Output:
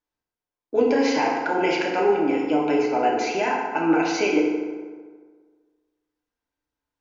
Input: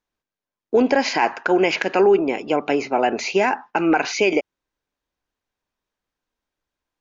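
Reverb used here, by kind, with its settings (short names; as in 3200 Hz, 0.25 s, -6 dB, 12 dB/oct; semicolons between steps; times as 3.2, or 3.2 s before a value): FDN reverb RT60 1.6 s, low-frequency decay 1×, high-frequency decay 0.55×, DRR -3 dB; gain -8 dB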